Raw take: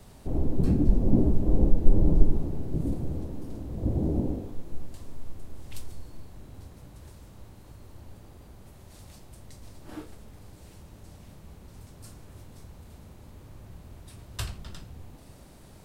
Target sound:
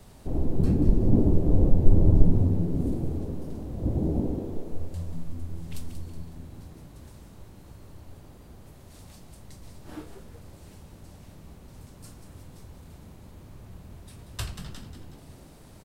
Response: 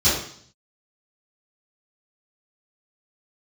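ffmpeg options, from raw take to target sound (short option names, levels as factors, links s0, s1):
-filter_complex "[0:a]asplit=6[s0][s1][s2][s3][s4][s5];[s1]adelay=185,afreqshift=81,volume=0.316[s6];[s2]adelay=370,afreqshift=162,volume=0.148[s7];[s3]adelay=555,afreqshift=243,volume=0.07[s8];[s4]adelay=740,afreqshift=324,volume=0.0327[s9];[s5]adelay=925,afreqshift=405,volume=0.0155[s10];[s0][s6][s7][s8][s9][s10]amix=inputs=6:normalize=0"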